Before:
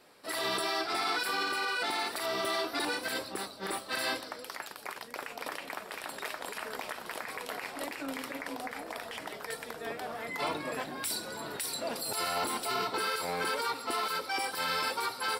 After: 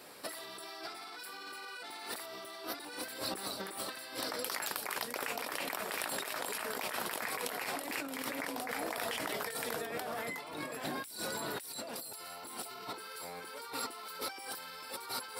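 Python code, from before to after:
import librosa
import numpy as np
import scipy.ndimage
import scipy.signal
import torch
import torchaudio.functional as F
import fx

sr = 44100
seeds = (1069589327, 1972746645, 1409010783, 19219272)

y = scipy.signal.sosfilt(scipy.signal.butter(2, 66.0, 'highpass', fs=sr, output='sos'), x)
y = fx.high_shelf(y, sr, hz=8800.0, db=9.5)
y = fx.over_compress(y, sr, threshold_db=-42.0, ratio=-1.0)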